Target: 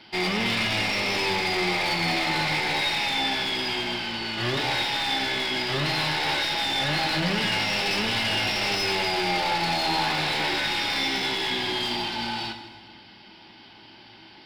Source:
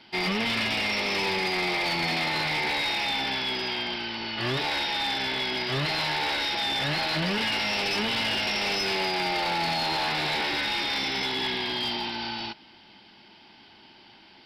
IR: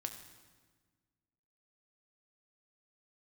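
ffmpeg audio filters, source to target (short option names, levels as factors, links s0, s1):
-filter_complex "[0:a]aeval=exprs='0.0794*(cos(1*acos(clip(val(0)/0.0794,-1,1)))-cos(1*PI/2))+0.002*(cos(5*acos(clip(val(0)/0.0794,-1,1)))-cos(5*PI/2))':c=same,asplit=2[s0][s1];[s1]aeval=exprs='clip(val(0),-1,0.0188)':c=same,volume=0.501[s2];[s0][s2]amix=inputs=2:normalize=0[s3];[1:a]atrim=start_sample=2205[s4];[s3][s4]afir=irnorm=-1:irlink=0,volume=1.12"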